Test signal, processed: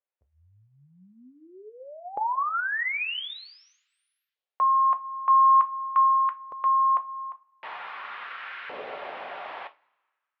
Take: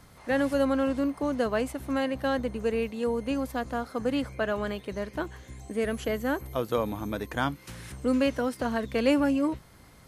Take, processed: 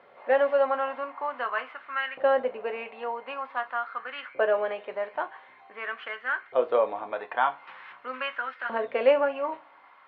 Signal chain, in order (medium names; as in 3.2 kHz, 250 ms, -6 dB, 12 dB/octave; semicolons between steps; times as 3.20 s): inverse Chebyshev low-pass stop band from 6.9 kHz, stop band 50 dB; two-slope reverb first 0.22 s, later 1.7 s, from -28 dB, DRR 6.5 dB; LFO high-pass saw up 0.46 Hz 500–1600 Hz